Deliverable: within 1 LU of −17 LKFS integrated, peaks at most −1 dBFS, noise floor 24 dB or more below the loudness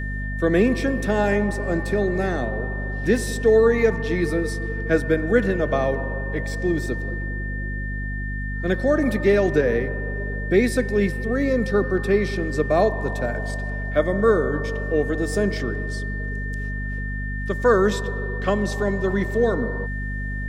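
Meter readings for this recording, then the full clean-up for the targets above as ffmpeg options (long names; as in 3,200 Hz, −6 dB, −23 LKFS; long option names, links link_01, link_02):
mains hum 50 Hz; hum harmonics up to 250 Hz; level of the hum −26 dBFS; interfering tone 1,800 Hz; level of the tone −32 dBFS; integrated loudness −22.5 LKFS; sample peak −5.0 dBFS; target loudness −17.0 LKFS
→ -af "bandreject=frequency=50:width_type=h:width=4,bandreject=frequency=100:width_type=h:width=4,bandreject=frequency=150:width_type=h:width=4,bandreject=frequency=200:width_type=h:width=4,bandreject=frequency=250:width_type=h:width=4"
-af "bandreject=frequency=1800:width=30"
-af "volume=5.5dB,alimiter=limit=-1dB:level=0:latency=1"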